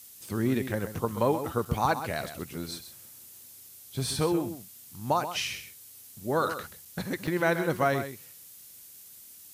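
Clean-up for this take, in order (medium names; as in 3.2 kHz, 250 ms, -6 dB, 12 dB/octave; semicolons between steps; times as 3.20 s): interpolate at 1.65/6.85/7.27 s, 4.9 ms; noise print and reduce 24 dB; inverse comb 131 ms -10.5 dB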